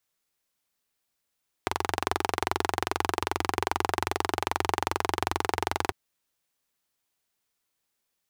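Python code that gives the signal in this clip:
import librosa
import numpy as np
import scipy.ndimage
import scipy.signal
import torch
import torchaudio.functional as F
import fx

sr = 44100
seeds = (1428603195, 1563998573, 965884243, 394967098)

y = fx.engine_single(sr, seeds[0], length_s=4.25, rpm=2700, resonances_hz=(88.0, 380.0, 810.0))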